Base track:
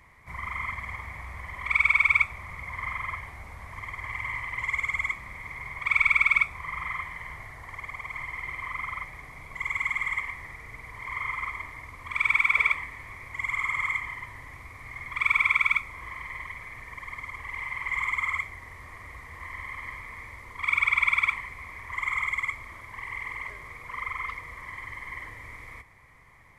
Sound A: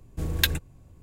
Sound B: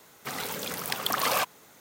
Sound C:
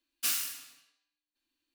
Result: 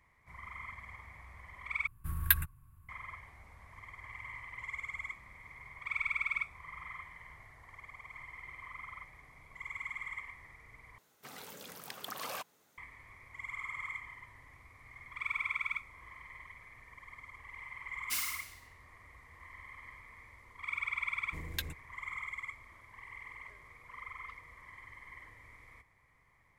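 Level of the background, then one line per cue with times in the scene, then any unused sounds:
base track -13 dB
1.87 s: replace with A -7 dB + FFT filter 120 Hz 0 dB, 620 Hz -26 dB, 1.1 kHz +9 dB, 3.4 kHz -7 dB, 6.6 kHz -13 dB, 11 kHz +11 dB
10.98 s: replace with B -15 dB
17.87 s: add C -6 dB + Schroeder reverb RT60 0.41 s, combs from 33 ms, DRR 11.5 dB
21.15 s: add A -15 dB

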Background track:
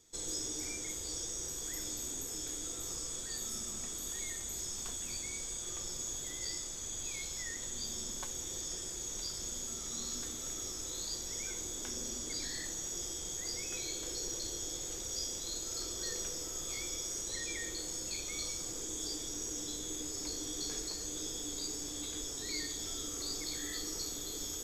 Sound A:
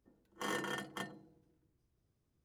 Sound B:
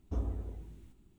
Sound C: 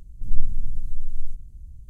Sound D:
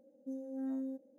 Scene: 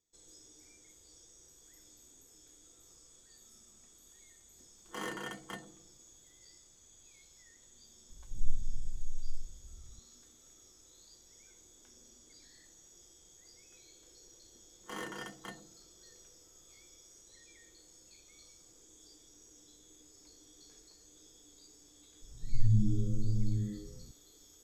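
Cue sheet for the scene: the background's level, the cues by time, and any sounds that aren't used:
background track -19.5 dB
4.53 s: add A -1.5 dB
8.10 s: add C -10.5 dB
14.48 s: add A -3.5 dB
22.22 s: add C -11 dB + frequency-shifting echo 94 ms, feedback 40%, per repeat +100 Hz, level -6.5 dB
not used: B, D

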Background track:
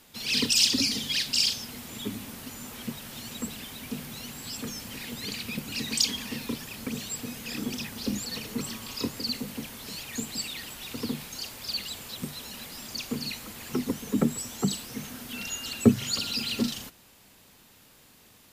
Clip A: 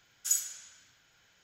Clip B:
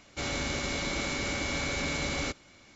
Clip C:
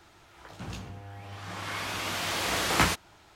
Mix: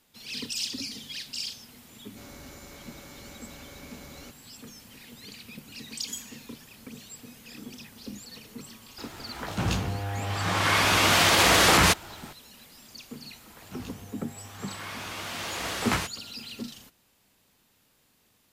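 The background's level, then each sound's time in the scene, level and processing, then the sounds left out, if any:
background track -10 dB
1.99 s: add B -13.5 dB + peaking EQ 2.8 kHz -8.5 dB 0.98 oct
5.82 s: add A -10 dB
8.98 s: add C -8.5 dB + loudness maximiser +20.5 dB
13.12 s: add C -4 dB

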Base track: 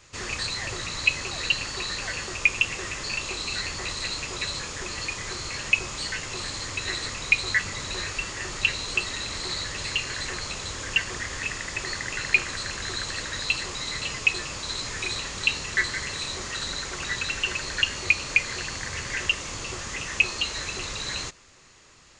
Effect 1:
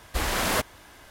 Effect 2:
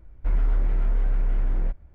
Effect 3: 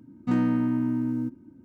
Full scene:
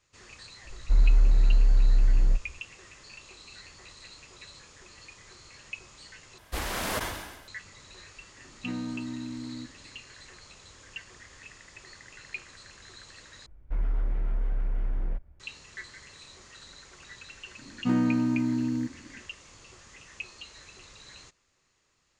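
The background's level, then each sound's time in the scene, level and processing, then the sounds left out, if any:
base track -18 dB
0.65 s: add 2 -4.5 dB + bass shelf 130 Hz +7.5 dB
6.38 s: replace with 1 -6 dB + decay stretcher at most 49 dB/s
8.37 s: add 3 -11 dB
13.46 s: replace with 2 -6 dB
17.58 s: add 3 -1 dB

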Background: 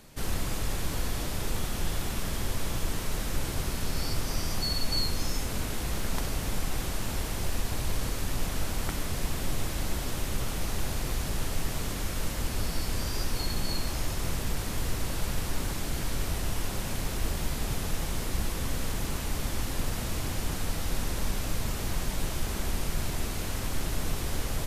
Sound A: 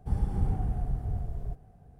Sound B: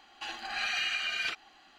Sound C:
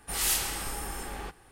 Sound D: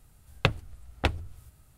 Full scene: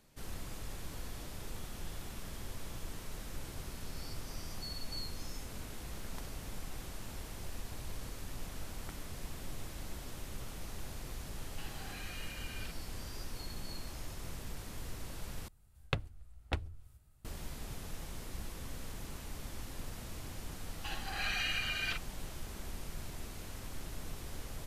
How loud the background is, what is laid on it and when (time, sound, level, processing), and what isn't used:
background -13 dB
11.37 s: add B -5 dB + compression 3:1, threshold -45 dBFS
15.48 s: replace with D -11 dB + bass shelf 72 Hz +6.5 dB
20.63 s: add B -4 dB
not used: A, C

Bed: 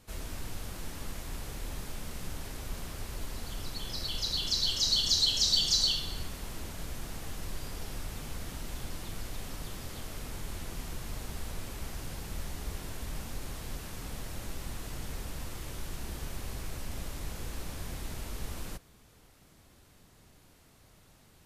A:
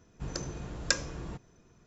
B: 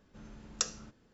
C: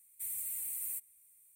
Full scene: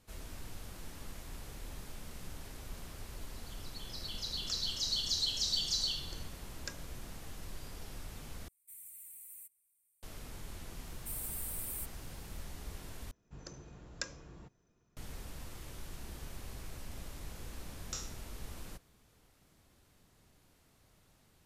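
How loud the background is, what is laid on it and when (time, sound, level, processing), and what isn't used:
bed -7 dB
3.89 s: add B -7.5 dB + peak limiter -17 dBFS
5.77 s: add A -16.5 dB
8.48 s: replace with C -12.5 dB
10.86 s: add C -3 dB
13.11 s: replace with A -12.5 dB
17.32 s: add B -13.5 dB + spectral sustain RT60 0.51 s

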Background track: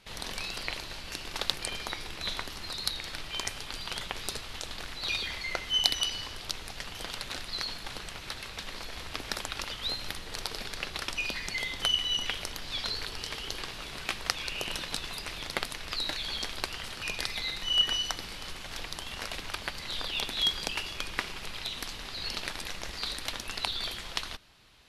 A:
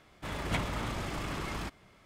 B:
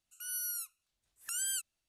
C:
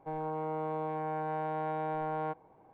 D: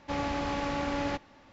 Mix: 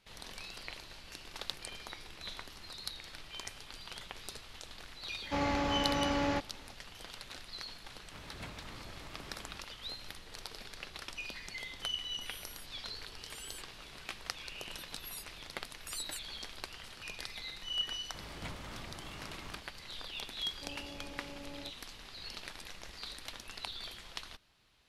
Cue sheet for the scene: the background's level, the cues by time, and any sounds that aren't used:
background track -10 dB
5.23 s: add D -0.5 dB
7.89 s: add A -15 dB
12.01 s: add B -15 dB
14.58 s: add B -7 dB + harmonic-percussive separation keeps percussive
17.91 s: add A -12 dB
20.53 s: add D -15.5 dB + high-order bell 1.9 kHz -12.5 dB 2.3 oct
not used: C

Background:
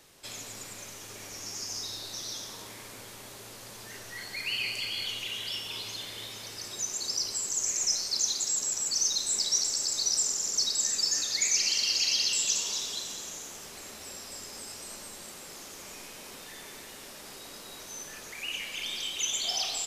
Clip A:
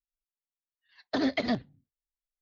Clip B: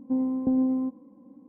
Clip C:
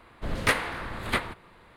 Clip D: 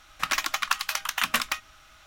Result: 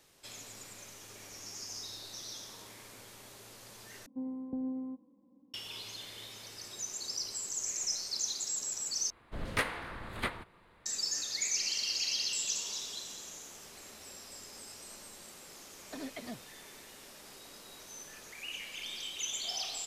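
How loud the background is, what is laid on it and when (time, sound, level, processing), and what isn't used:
background -6.5 dB
4.06 s: replace with B -13 dB
9.10 s: replace with C -8 dB
14.79 s: add A -15.5 dB
not used: D

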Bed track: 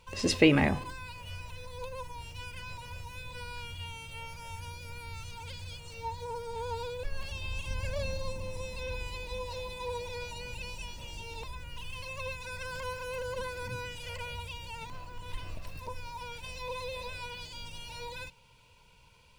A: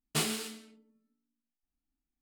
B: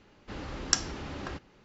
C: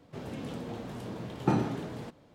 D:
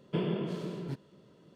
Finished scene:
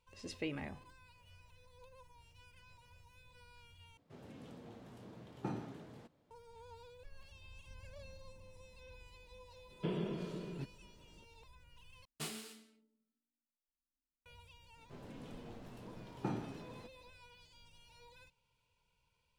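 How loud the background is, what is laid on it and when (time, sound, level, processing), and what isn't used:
bed track -19 dB
3.97 s: replace with C -14.5 dB
9.70 s: add D -6.5 dB
12.05 s: replace with A -13 dB
14.77 s: add C -12.5 dB
not used: B

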